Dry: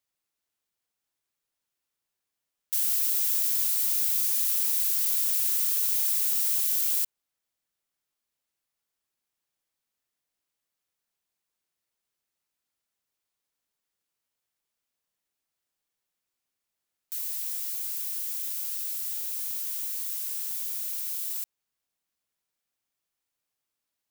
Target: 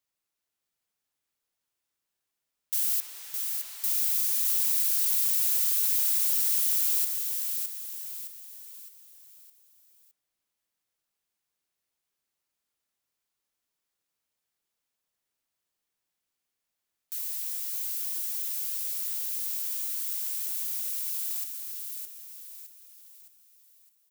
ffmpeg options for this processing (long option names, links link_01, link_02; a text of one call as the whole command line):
ffmpeg -i in.wav -filter_complex "[0:a]asettb=1/sr,asplit=3[link_01][link_02][link_03];[link_01]atrim=end=3.004[link_04];[link_02]atrim=start=3:end=3.84,asetpts=PTS-STARTPTS,afade=type=in:duration=0.004:curve=qsin,afade=type=out:start_time=0.836:duration=0.004:curve=qsin,lowpass=frequency=1700:poles=1[link_05];[link_03]atrim=start=3.836[link_06];[link_04][link_05]acrossfade=duration=0.004:curve1=hsin:curve2=qsin[link_07];[link_07][link_06]acrossfade=duration=0.004:curve1=qsin:curve2=hsin,aecho=1:1:613|1226|1839|2452|3065:0.562|0.242|0.104|0.0447|0.0192,volume=-1dB" out.wav